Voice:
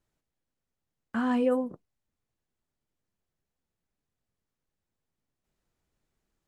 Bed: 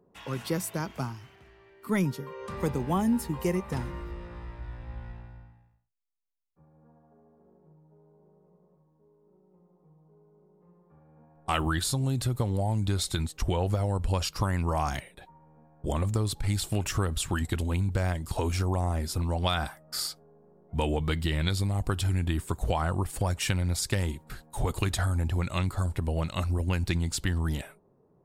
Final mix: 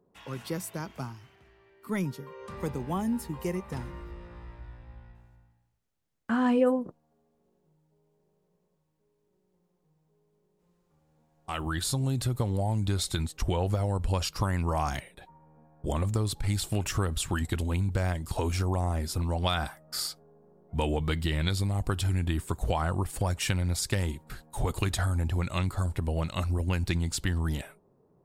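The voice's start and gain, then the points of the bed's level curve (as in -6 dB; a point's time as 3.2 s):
5.15 s, +2.0 dB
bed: 4.54 s -4 dB
5.21 s -11 dB
11.3 s -11 dB
11.9 s -0.5 dB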